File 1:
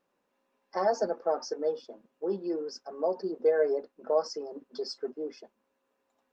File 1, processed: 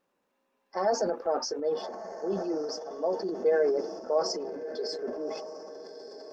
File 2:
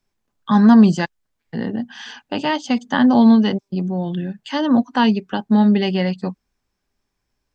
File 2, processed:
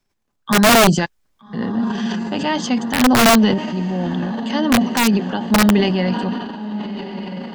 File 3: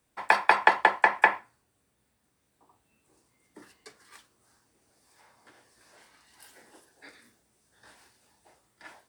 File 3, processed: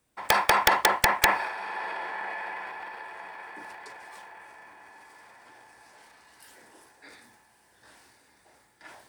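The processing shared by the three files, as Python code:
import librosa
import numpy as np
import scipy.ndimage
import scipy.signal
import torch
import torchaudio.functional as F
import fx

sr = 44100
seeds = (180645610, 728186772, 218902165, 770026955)

y = fx.echo_diffused(x, sr, ms=1242, feedback_pct=42, wet_db=-12.0)
y = (np.mod(10.0 ** (7.0 / 20.0) * y + 1.0, 2.0) - 1.0) / 10.0 ** (7.0 / 20.0)
y = fx.transient(y, sr, attack_db=-1, sustain_db=8)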